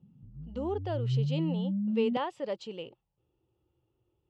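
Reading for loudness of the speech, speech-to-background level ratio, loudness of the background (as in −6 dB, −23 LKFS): −35.5 LKFS, −3.0 dB, −32.5 LKFS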